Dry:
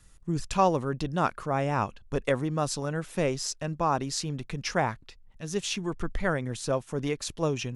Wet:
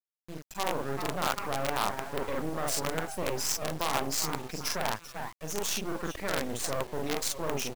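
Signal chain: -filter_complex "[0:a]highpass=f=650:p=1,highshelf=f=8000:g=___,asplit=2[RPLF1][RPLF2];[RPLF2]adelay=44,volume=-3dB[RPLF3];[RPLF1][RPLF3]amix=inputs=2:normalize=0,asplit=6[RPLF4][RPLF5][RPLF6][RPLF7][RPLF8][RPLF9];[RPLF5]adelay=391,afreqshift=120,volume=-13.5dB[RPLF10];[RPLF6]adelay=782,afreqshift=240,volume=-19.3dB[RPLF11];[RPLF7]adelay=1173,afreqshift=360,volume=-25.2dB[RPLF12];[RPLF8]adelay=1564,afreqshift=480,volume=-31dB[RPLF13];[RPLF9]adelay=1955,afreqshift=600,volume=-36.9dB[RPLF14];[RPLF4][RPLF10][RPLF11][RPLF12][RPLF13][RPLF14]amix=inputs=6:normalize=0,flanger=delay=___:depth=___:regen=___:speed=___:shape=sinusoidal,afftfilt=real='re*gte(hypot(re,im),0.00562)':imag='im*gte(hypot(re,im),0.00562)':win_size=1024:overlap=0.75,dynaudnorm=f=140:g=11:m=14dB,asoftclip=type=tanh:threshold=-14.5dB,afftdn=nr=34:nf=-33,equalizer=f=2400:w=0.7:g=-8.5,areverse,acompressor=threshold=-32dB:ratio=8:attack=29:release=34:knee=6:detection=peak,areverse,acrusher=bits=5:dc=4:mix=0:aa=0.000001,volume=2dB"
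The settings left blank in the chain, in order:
3.5, 2.9, 8, -79, 0.64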